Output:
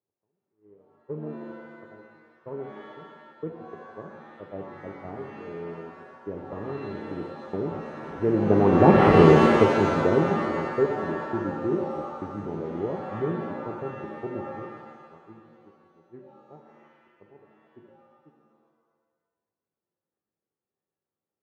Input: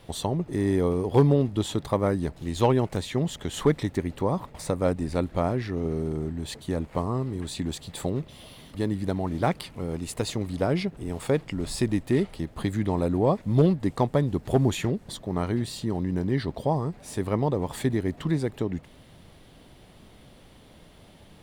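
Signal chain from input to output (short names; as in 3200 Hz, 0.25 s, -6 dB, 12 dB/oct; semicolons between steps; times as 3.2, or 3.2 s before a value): delta modulation 16 kbps, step -29 dBFS; Doppler pass-by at 9.06, 22 m/s, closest 2.2 m; LPF 1100 Hz 12 dB/oct; gate -58 dBFS, range -38 dB; HPF 100 Hz; bell 390 Hz +9.5 dB 0.61 oct; maximiser +22 dB; shimmer reverb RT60 1.3 s, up +7 st, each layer -2 dB, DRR 4 dB; gain -4 dB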